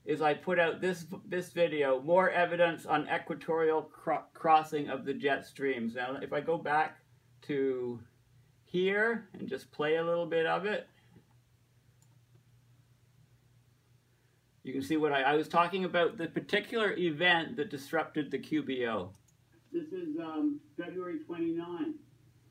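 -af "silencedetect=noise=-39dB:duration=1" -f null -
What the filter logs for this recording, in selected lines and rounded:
silence_start: 10.82
silence_end: 14.66 | silence_duration: 3.84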